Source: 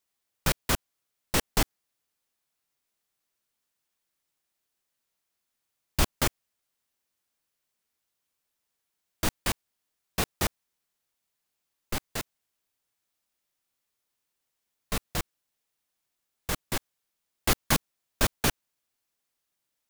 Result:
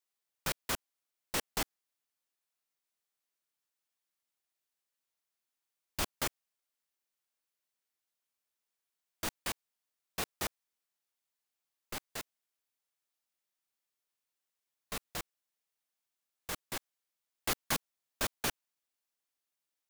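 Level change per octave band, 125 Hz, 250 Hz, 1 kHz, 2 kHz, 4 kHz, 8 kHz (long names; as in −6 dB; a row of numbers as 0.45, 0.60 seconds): −14.5, −11.5, −7.5, −7.0, −7.0, −7.0 decibels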